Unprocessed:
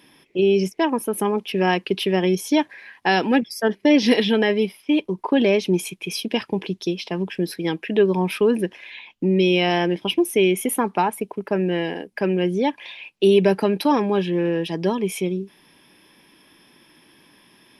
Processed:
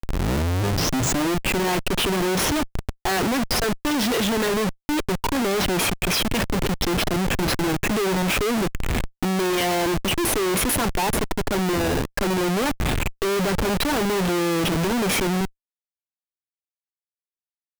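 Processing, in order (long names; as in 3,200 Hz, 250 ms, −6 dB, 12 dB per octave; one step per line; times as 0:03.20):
turntable start at the beginning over 1.62 s
comparator with hysteresis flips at −32.5 dBFS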